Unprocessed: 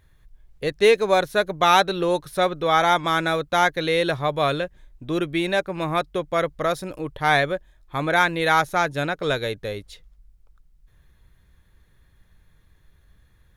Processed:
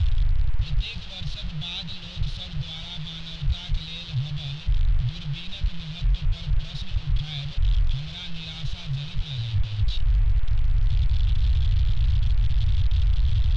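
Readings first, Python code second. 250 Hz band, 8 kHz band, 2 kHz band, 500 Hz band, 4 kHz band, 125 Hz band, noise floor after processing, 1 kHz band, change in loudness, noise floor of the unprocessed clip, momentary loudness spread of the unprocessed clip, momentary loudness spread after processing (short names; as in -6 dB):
-10.0 dB, under -10 dB, -18.5 dB, -31.0 dB, -3.5 dB, +9.0 dB, -37 dBFS, -28.0 dB, -6.0 dB, -59 dBFS, 11 LU, 9 LU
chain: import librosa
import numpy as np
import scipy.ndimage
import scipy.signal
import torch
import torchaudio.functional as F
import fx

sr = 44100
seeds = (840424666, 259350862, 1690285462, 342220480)

p1 = fx.delta_mod(x, sr, bps=64000, step_db=-18.5)
p2 = scipy.signal.sosfilt(scipy.signal.cheby2(4, 40, [220.0, 2000.0], 'bandstop', fs=sr, output='sos'), p1)
p3 = fx.quant_dither(p2, sr, seeds[0], bits=6, dither='triangular')
p4 = p2 + F.gain(torch.from_numpy(p3), -11.5).numpy()
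p5 = scipy.signal.sosfilt(scipy.signal.butter(4, 2800.0, 'lowpass', fs=sr, output='sos'), p4)
y = F.gain(torch.from_numpy(p5), 5.0).numpy()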